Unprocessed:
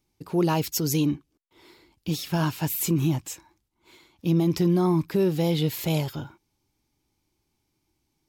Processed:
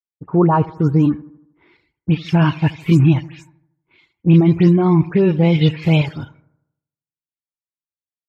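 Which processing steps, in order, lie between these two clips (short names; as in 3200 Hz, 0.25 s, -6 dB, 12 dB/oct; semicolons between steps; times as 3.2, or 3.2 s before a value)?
spectral delay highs late, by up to 0.13 s; reverb removal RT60 0.66 s; expander -56 dBFS; low-pass sweep 1200 Hz -> 2400 Hz, 0.76–1.86; in parallel at -2.5 dB: level quantiser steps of 14 dB; on the sum: bell 120 Hz +7.5 dB 1.9 oct; on a send: analogue delay 78 ms, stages 1024, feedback 59%, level -18.5 dB; on the sum: three-band expander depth 40%; gain +3.5 dB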